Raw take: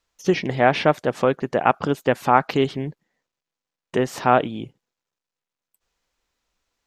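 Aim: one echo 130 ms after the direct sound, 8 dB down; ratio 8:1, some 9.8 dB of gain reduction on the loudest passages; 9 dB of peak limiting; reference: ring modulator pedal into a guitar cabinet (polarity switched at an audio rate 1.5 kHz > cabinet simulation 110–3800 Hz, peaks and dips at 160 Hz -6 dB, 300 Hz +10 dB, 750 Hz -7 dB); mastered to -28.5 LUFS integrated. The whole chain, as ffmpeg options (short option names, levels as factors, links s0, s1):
-af "acompressor=threshold=0.0891:ratio=8,alimiter=limit=0.119:level=0:latency=1,aecho=1:1:130:0.398,aeval=exprs='val(0)*sgn(sin(2*PI*1500*n/s))':c=same,highpass=110,equalizer=f=160:t=q:w=4:g=-6,equalizer=f=300:t=q:w=4:g=10,equalizer=f=750:t=q:w=4:g=-7,lowpass=f=3800:w=0.5412,lowpass=f=3800:w=1.3066,volume=1.26"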